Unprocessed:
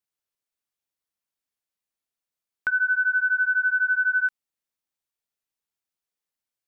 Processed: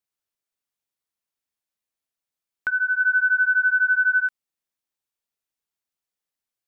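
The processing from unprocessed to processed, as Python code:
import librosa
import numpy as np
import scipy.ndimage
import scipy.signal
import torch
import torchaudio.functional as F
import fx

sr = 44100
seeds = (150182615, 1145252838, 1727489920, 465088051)

y = fx.dynamic_eq(x, sr, hz=1600.0, q=1.4, threshold_db=-29.0, ratio=4.0, max_db=3, at=(3.0, 4.2))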